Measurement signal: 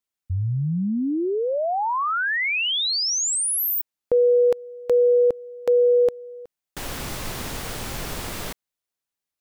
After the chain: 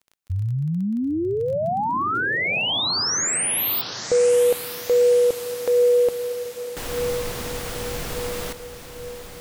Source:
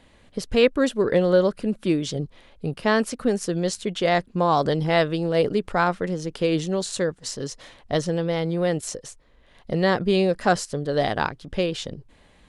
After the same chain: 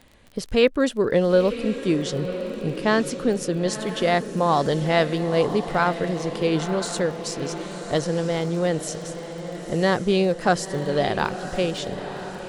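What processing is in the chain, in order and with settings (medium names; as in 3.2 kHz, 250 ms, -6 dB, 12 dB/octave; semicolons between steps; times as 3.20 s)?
echo that smears into a reverb 981 ms, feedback 58%, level -10.5 dB; crackle 19 per s -34 dBFS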